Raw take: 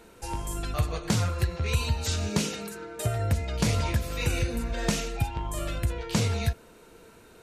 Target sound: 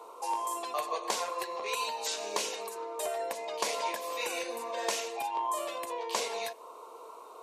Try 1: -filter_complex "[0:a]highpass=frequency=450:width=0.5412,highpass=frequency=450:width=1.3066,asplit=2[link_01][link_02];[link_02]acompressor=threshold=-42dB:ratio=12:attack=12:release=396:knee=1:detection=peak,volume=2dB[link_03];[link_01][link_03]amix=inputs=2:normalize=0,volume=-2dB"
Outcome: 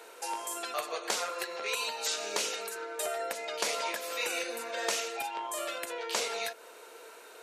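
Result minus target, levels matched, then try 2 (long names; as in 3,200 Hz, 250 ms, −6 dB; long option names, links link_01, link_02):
1,000 Hz band −4.0 dB
-filter_complex "[0:a]highpass=frequency=450:width=0.5412,highpass=frequency=450:width=1.3066,asplit=2[link_01][link_02];[link_02]acompressor=threshold=-42dB:ratio=12:attack=12:release=396:knee=1:detection=peak,lowpass=frequency=1100:width_type=q:width=11,volume=2dB[link_03];[link_01][link_03]amix=inputs=2:normalize=0,volume=-2dB"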